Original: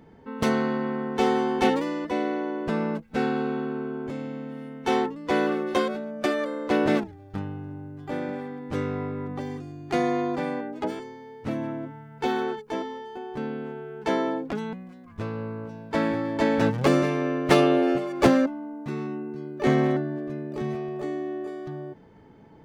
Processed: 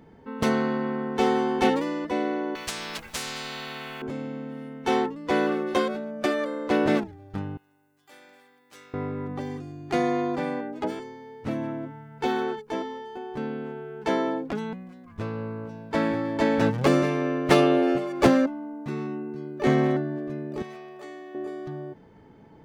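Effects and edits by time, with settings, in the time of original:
0:02.55–0:04.02: every bin compressed towards the loudest bin 10 to 1
0:07.57–0:08.94: first difference
0:20.62–0:21.35: high-pass filter 1,300 Hz 6 dB per octave

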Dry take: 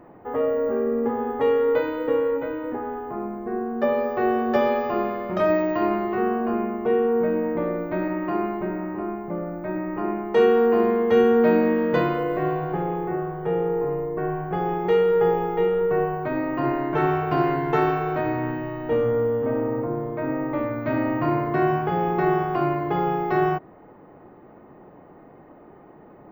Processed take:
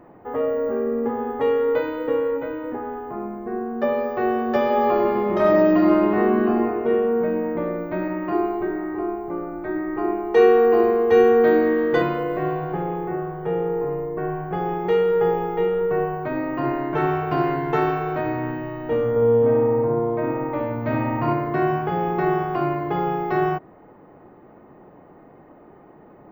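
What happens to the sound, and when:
0:04.66–0:06.61: thrown reverb, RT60 2.2 s, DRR −2 dB
0:08.32–0:12.02: comb filter 2.6 ms, depth 74%
0:19.10–0:21.33: feedback echo with a low-pass in the loop 60 ms, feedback 61%, low-pass 4,300 Hz, level −5 dB

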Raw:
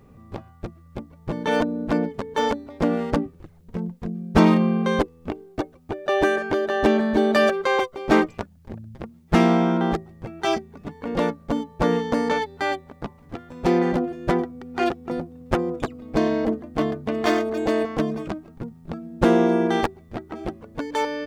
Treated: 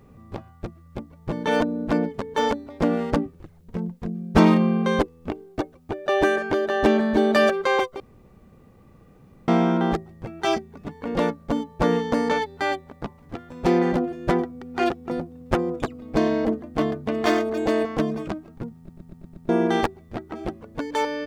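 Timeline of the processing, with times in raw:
0:08.00–0:09.48: fill with room tone
0:18.77: stutter in place 0.12 s, 6 plays

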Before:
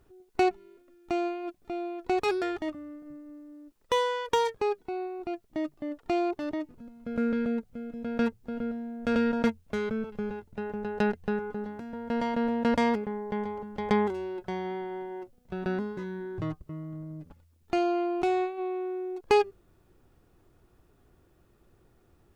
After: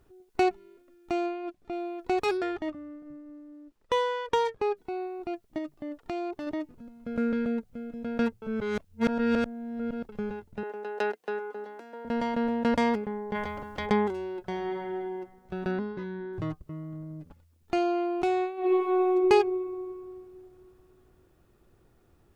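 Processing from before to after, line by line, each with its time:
0:01.26–0:01.73: high-shelf EQ 7,600 Hz −10 dB
0:02.37–0:04.77: high-shelf EQ 6,000 Hz −11 dB
0:05.58–0:06.47: downward compressor 2 to 1, threshold −34 dBFS
0:08.42–0:10.09: reverse
0:10.63–0:12.05: high-pass filter 340 Hz 24 dB per octave
0:13.34–0:13.85: ceiling on every frequency bin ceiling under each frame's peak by 17 dB
0:14.45–0:14.95: thrown reverb, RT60 1.5 s, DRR 4.5 dB
0:15.71–0:16.33: low-pass filter 4,900 Hz 24 dB per octave
0:18.59–0:19.11: thrown reverb, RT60 2.5 s, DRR −11 dB

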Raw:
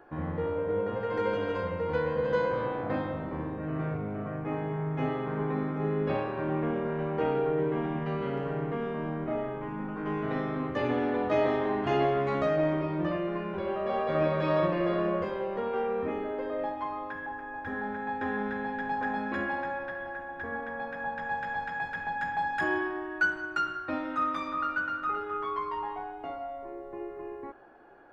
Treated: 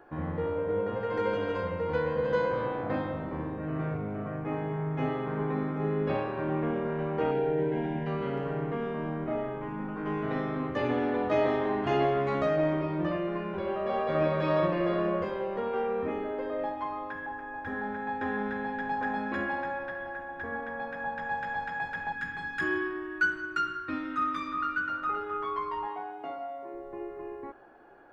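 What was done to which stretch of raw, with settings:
0:07.31–0:08.07: Butterworth band-reject 1,200 Hz, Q 2.7
0:22.12–0:24.89: flat-topped bell 700 Hz −13 dB 1 octave
0:25.87–0:26.74: high-pass filter 170 Hz

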